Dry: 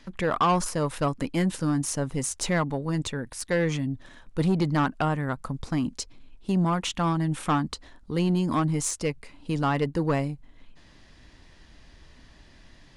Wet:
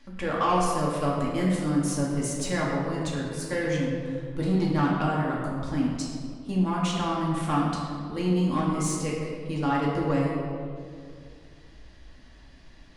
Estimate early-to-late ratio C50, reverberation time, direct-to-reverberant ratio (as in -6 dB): 0.0 dB, 2.2 s, -5.0 dB